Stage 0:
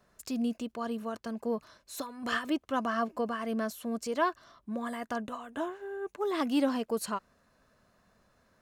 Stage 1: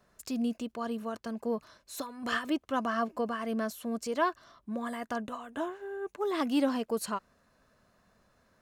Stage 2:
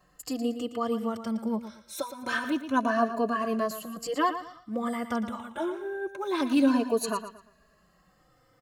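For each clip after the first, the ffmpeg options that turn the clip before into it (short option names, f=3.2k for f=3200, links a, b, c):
-af anull
-filter_complex "[0:a]afftfilt=real='re*pow(10,10/40*sin(2*PI*(1.5*log(max(b,1)*sr/1024/100)/log(2)-(0.26)*(pts-256)/sr)))':imag='im*pow(10,10/40*sin(2*PI*(1.5*log(max(b,1)*sr/1024/100)/log(2)-(0.26)*(pts-256)/sr)))':win_size=1024:overlap=0.75,aecho=1:1:115|230|345:0.282|0.0846|0.0254,asplit=2[a][b];[b]adelay=3.3,afreqshift=-0.49[c];[a][c]amix=inputs=2:normalize=1,volume=5dB"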